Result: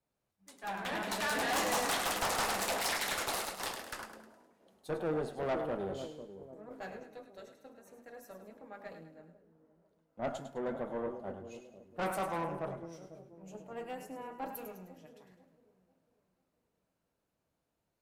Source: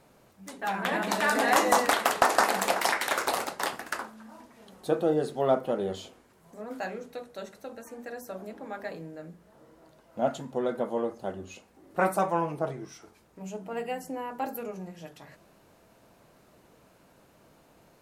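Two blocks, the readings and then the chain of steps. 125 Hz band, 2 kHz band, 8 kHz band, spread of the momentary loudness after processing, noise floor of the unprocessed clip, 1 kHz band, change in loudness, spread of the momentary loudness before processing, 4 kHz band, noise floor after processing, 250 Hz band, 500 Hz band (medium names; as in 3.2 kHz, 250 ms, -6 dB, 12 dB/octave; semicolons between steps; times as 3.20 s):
-6.5 dB, -8.0 dB, -4.0 dB, 21 LU, -61 dBFS, -9.5 dB, -7.5 dB, 20 LU, -3.5 dB, -84 dBFS, -8.0 dB, -9.0 dB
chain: two-band feedback delay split 570 Hz, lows 496 ms, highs 104 ms, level -8 dB; valve stage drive 26 dB, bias 0.45; three bands expanded up and down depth 70%; trim -5 dB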